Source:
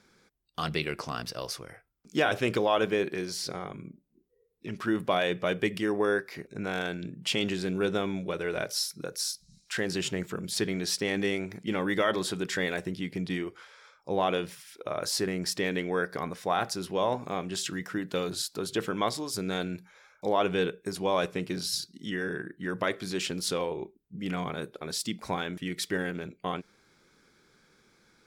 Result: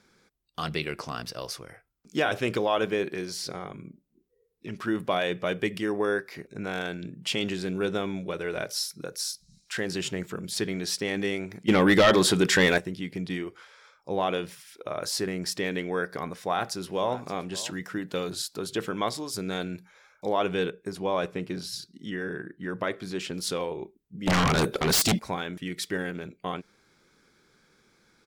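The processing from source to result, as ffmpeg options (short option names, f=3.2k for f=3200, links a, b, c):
-filter_complex "[0:a]asettb=1/sr,asplit=3[a][b][c];[a]atrim=end=11.684[d];[b]atrim=start=11.68:end=12.78,asetpts=PTS-STARTPTS,afade=t=in:d=0.004:c=qsin,afade=t=out:st=1.096:d=0.004:c=qsin,aeval=exprs='0.237*sin(PI/2*2.24*val(0)/0.237)':c=same[e];[c]atrim=start=12.776[f];[d][e]acrossfade=d=0.004:c1=hsin:c2=qsin[g];[g][f]acrossfade=d=0.004:c1=qsin:c2=hsin,asplit=2[h][i];[i]afade=t=in:st=16.3:d=0.01,afade=t=out:st=17.14:d=0.01,aecho=0:1:570|1140:0.133352|0.0133352[j];[h][j]amix=inputs=2:normalize=0,asettb=1/sr,asplit=3[k][l][m];[k]atrim=end=20.704[n];[l]atrim=start=20.7:end=23.34,asetpts=PTS-STARTPTS,afade=t=in:d=0.004:c=qsin,afade=t=out:st=2.636:d=0.004:c=qsin,highshelf=f=3.2k:g=-7[o];[m]atrim=start=23.336[p];[n][o]acrossfade=d=0.004:c1=hsin:c2=qsin[q];[q][p]acrossfade=d=0.004:c1=qsin:c2=hsin,asettb=1/sr,asplit=3[r][s][t];[r]atrim=end=24.274[u];[s]atrim=start=24.27:end=25.19,asetpts=PTS-STARTPTS,afade=t=in:d=0.004:c=qsin,afade=t=out:st=0.916:d=0.004:c=qsin,aeval=exprs='0.119*sin(PI/2*5.01*val(0)/0.119)':c=same[v];[t]atrim=start=25.186[w];[u][v]acrossfade=d=0.004:c1=hsin:c2=qsin[x];[x][w]acrossfade=d=0.004:c1=qsin:c2=hsin"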